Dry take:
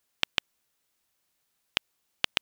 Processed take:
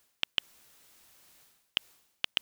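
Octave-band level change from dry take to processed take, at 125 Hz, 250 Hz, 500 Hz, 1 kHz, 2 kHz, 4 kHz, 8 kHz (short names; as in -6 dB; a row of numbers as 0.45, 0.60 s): -8.0, -8.0, -8.0, -8.0, -5.0, -1.5, -7.0 dB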